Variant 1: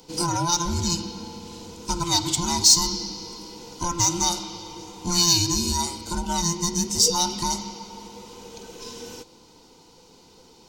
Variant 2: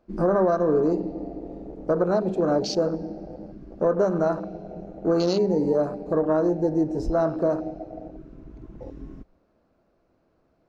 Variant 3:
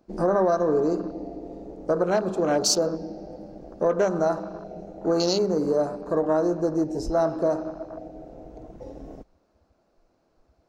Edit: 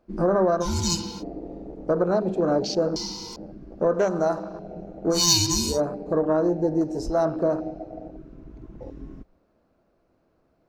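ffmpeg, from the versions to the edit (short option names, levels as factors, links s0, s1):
-filter_complex "[0:a]asplit=3[s0][s1][s2];[2:a]asplit=2[s3][s4];[1:a]asplit=6[s5][s6][s7][s8][s9][s10];[s5]atrim=end=0.66[s11];[s0]atrim=start=0.6:end=1.24[s12];[s6]atrim=start=1.18:end=2.962[s13];[s1]atrim=start=2.958:end=3.362[s14];[s7]atrim=start=3.358:end=3.942[s15];[s3]atrim=start=3.938:end=4.592[s16];[s8]atrim=start=4.588:end=5.25[s17];[s2]atrim=start=5.09:end=5.81[s18];[s9]atrim=start=5.65:end=6.812[s19];[s4]atrim=start=6.808:end=7.252[s20];[s10]atrim=start=7.248[s21];[s11][s12]acrossfade=d=0.06:c1=tri:c2=tri[s22];[s22][s13]acrossfade=d=0.06:c1=tri:c2=tri[s23];[s23][s14]acrossfade=d=0.004:c1=hsin:c2=hsin[s24];[s24][s15]acrossfade=d=0.004:c1=hsin:c2=hsin[s25];[s25][s16]acrossfade=d=0.004:c1=hsin:c2=hsin[s26];[s26][s17]acrossfade=d=0.004:c1=hsin:c2=hsin[s27];[s27][s18]acrossfade=d=0.16:c1=tri:c2=tri[s28];[s28][s19]acrossfade=d=0.16:c1=tri:c2=tri[s29];[s29][s20]acrossfade=d=0.004:c1=hsin:c2=hsin[s30];[s30][s21]acrossfade=d=0.004:c1=hsin:c2=hsin"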